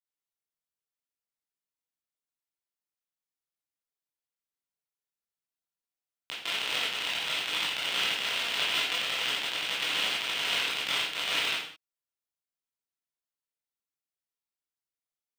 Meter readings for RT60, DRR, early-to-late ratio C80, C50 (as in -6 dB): not exponential, -8.0 dB, 6.0 dB, 2.0 dB